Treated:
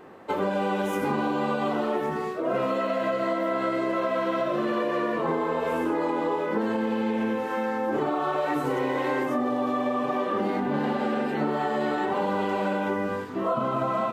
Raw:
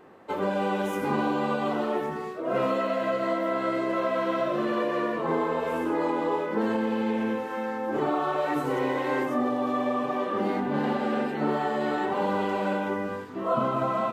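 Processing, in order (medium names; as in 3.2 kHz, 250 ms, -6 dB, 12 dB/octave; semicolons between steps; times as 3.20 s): compression, threshold -27 dBFS, peak gain reduction 7 dB; trim +4.5 dB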